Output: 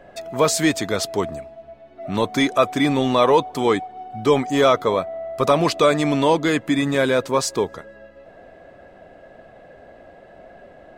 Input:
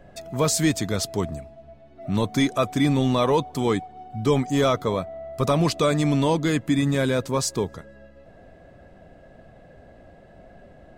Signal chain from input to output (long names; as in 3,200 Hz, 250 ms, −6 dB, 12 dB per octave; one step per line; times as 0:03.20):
bass and treble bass −12 dB, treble −6 dB
level +6.5 dB